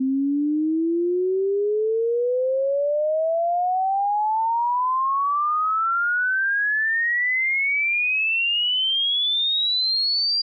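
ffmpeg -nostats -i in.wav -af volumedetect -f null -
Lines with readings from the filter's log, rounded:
mean_volume: -21.7 dB
max_volume: -18.7 dB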